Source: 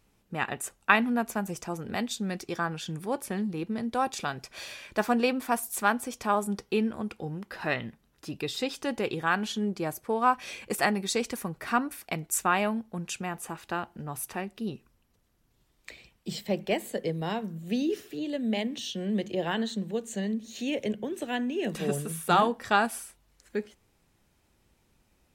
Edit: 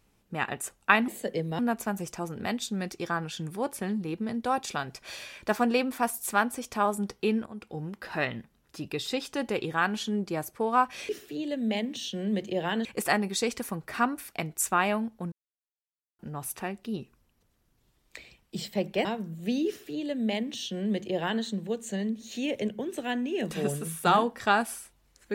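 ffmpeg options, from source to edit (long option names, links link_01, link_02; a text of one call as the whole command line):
ffmpeg -i in.wav -filter_complex "[0:a]asplit=9[link_01][link_02][link_03][link_04][link_05][link_06][link_07][link_08][link_09];[link_01]atrim=end=1.082[link_10];[link_02]atrim=start=16.778:end=17.292[link_11];[link_03]atrim=start=1.078:end=6.95,asetpts=PTS-STARTPTS,afade=type=out:start_time=5.868:duration=0.004:curve=hsin:silence=0.211349[link_12];[link_04]atrim=start=6.95:end=10.582,asetpts=PTS-STARTPTS,afade=type=in:duration=0.36:silence=0.211349[link_13];[link_05]atrim=start=17.908:end=19.672[link_14];[link_06]atrim=start=10.578:end=13.05,asetpts=PTS-STARTPTS,afade=type=out:start_time=2.468:duration=0.004:curve=hsin[link_15];[link_07]atrim=start=13.05:end=13.92,asetpts=PTS-STARTPTS,volume=0[link_16];[link_08]atrim=start=13.92:end=16.782,asetpts=PTS-STARTPTS,afade=type=in:duration=0.004:curve=hsin[link_17];[link_09]atrim=start=17.288[link_18];[link_10][link_11]acrossfade=duration=0.004:curve1=hsin:curve2=hsin[link_19];[link_12][link_13]concat=n=2:v=0:a=1[link_20];[link_19][link_20]acrossfade=duration=0.004:curve1=hsin:curve2=hsin[link_21];[link_21][link_14]acrossfade=duration=0.004:curve1=hsin:curve2=hsin[link_22];[link_15][link_16][link_17]concat=n=3:v=0:a=1[link_23];[link_22][link_23]acrossfade=duration=0.004:curve1=hsin:curve2=hsin[link_24];[link_24][link_18]acrossfade=duration=0.004:curve1=hsin:curve2=hsin" out.wav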